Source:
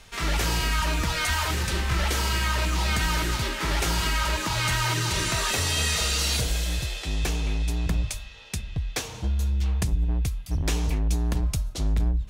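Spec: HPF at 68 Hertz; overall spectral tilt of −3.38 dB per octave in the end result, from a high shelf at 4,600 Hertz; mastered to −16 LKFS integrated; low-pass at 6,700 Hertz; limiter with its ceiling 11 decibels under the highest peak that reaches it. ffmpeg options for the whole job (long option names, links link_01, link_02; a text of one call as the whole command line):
ffmpeg -i in.wav -af "highpass=68,lowpass=6700,highshelf=frequency=4600:gain=4.5,volume=15.5dB,alimiter=limit=-7.5dB:level=0:latency=1" out.wav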